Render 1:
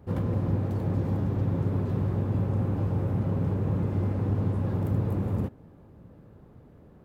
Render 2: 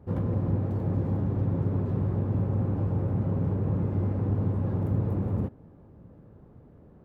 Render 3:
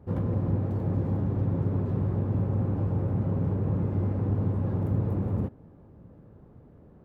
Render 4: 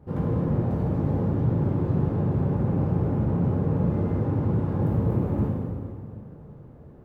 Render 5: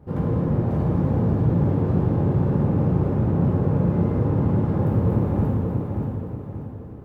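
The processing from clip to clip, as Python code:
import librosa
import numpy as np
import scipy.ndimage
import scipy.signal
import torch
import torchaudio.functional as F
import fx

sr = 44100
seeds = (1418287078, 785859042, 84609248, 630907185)

y1 = fx.high_shelf(x, sr, hz=2200.0, db=-11.0)
y2 = y1
y3 = fx.rev_plate(y2, sr, seeds[0], rt60_s=2.3, hf_ratio=0.9, predelay_ms=0, drr_db=-3.5)
y4 = fx.echo_feedback(y3, sr, ms=583, feedback_pct=39, wet_db=-5)
y4 = y4 * 10.0 ** (2.5 / 20.0)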